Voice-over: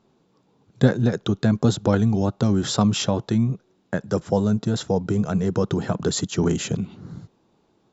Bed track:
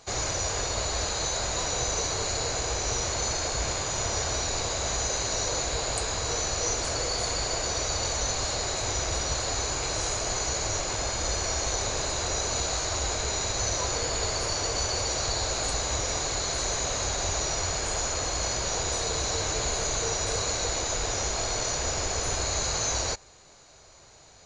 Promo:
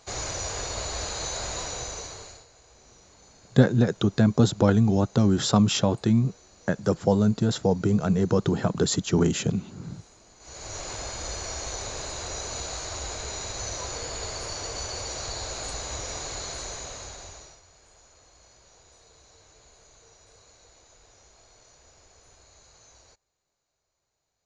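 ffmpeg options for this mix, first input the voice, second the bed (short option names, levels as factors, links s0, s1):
-filter_complex "[0:a]adelay=2750,volume=0.944[s0];[1:a]volume=7.94,afade=t=out:st=1.51:d=0.95:silence=0.0668344,afade=t=in:st=10.39:d=0.47:silence=0.0891251,afade=t=out:st=16.43:d=1.18:silence=0.0794328[s1];[s0][s1]amix=inputs=2:normalize=0"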